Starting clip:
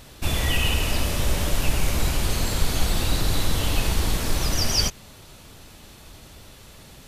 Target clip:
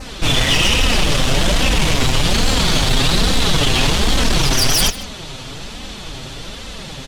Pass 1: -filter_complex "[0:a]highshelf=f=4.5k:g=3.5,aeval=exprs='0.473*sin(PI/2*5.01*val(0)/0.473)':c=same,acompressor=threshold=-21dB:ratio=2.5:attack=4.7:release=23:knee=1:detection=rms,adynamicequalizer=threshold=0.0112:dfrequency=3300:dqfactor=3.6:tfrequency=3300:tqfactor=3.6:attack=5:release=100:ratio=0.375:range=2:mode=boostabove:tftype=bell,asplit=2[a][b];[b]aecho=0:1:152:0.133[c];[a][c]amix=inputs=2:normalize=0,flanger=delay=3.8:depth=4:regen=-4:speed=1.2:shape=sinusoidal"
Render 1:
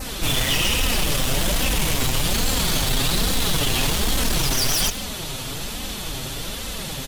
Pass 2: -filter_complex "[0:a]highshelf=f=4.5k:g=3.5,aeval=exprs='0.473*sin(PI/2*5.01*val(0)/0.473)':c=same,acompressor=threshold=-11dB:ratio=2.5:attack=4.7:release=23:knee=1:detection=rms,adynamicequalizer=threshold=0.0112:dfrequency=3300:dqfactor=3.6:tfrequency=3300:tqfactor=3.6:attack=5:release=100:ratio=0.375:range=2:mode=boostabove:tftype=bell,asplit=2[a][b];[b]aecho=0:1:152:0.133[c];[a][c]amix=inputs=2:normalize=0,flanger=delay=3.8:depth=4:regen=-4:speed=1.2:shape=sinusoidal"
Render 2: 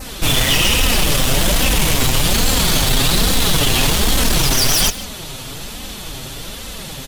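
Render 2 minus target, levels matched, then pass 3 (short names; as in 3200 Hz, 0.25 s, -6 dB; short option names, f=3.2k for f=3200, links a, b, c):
8000 Hz band +3.0 dB
-filter_complex "[0:a]lowpass=6.1k,highshelf=f=4.5k:g=3.5,aeval=exprs='0.473*sin(PI/2*5.01*val(0)/0.473)':c=same,acompressor=threshold=-11dB:ratio=2.5:attack=4.7:release=23:knee=1:detection=rms,adynamicequalizer=threshold=0.0112:dfrequency=3300:dqfactor=3.6:tfrequency=3300:tqfactor=3.6:attack=5:release=100:ratio=0.375:range=2:mode=boostabove:tftype=bell,asplit=2[a][b];[b]aecho=0:1:152:0.133[c];[a][c]amix=inputs=2:normalize=0,flanger=delay=3.8:depth=4:regen=-4:speed=1.2:shape=sinusoidal"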